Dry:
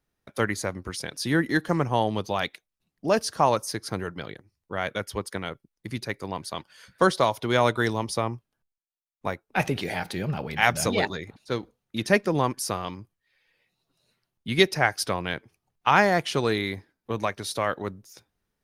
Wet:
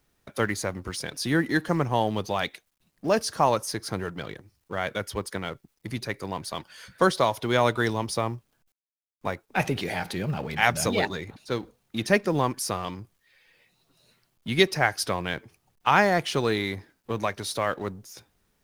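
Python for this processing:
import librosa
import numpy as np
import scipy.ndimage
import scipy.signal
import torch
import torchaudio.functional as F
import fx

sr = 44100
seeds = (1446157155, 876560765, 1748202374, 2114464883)

y = fx.law_mismatch(x, sr, coded='mu')
y = y * librosa.db_to_amplitude(-1.0)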